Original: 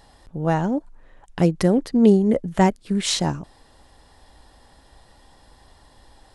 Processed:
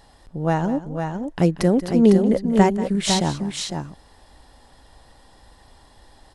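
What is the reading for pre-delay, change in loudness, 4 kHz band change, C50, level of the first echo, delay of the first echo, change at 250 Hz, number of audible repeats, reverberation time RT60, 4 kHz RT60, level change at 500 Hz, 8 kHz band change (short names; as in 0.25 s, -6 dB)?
none, 0.0 dB, +1.0 dB, none, -15.0 dB, 0.186 s, +1.0 dB, 2, none, none, +1.0 dB, +1.0 dB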